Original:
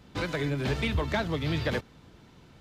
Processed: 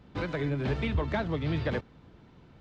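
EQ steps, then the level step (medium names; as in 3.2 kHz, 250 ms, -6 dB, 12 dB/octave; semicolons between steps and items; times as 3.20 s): tape spacing loss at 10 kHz 20 dB; 0.0 dB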